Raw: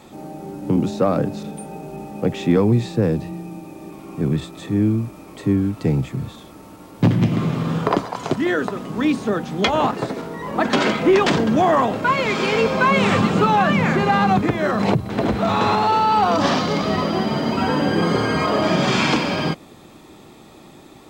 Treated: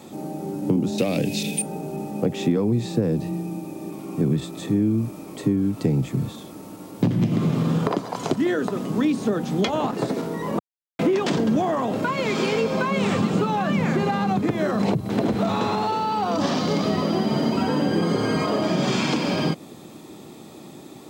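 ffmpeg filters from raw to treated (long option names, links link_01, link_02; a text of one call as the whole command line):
ffmpeg -i in.wav -filter_complex "[0:a]asettb=1/sr,asplit=3[link_01][link_02][link_03];[link_01]atrim=end=0.984[link_04];[link_02]atrim=start=0.98:end=1.62,asetpts=PTS-STARTPTS,afade=type=in:duration=0.004:curve=qsin,afade=type=out:start_time=0.636:duration=0.004:curve=qsin,highshelf=frequency=1800:width_type=q:width=3:gain=11[link_05];[link_03]atrim=start=1.616[link_06];[link_04][link_05]acrossfade=duration=0.004:curve1=hsin:curve2=qsin[link_07];[link_07][link_06]acrossfade=duration=0.004:curve1=qsin:curve2=hsin,asplit=3[link_08][link_09][link_10];[link_08]atrim=end=10.59,asetpts=PTS-STARTPTS,afade=type=out:start_time=10.586:duration=0.004:curve=hsin[link_11];[link_09]atrim=start=10.59:end=10.99,asetpts=PTS-STARTPTS,volume=0[link_12];[link_10]atrim=start=10.99,asetpts=PTS-STARTPTS,afade=type=in:duration=0.004:curve=hsin[link_13];[link_11][link_12][link_13]concat=n=3:v=0:a=1,highpass=130,acompressor=threshold=-21dB:ratio=6,equalizer=frequency=1600:width=0.43:gain=-7.5,volume=5dB" out.wav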